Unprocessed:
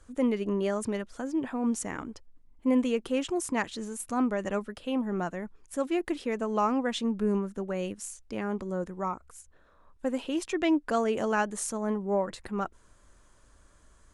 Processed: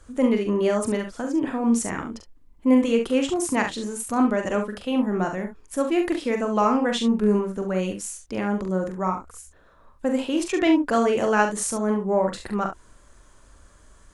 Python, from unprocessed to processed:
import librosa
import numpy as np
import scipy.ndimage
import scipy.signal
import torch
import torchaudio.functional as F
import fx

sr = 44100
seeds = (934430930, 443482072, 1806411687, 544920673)

y = fx.room_early_taps(x, sr, ms=(43, 69), db=(-6.0, -9.5))
y = F.gain(torch.from_numpy(y), 5.5).numpy()